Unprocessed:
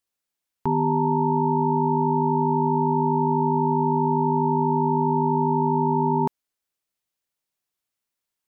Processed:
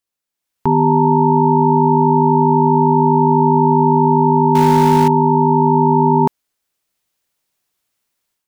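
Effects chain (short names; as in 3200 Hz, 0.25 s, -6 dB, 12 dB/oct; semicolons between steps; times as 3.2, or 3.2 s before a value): 4.55–5.08 zero-crossing step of -26 dBFS; AGC gain up to 11.5 dB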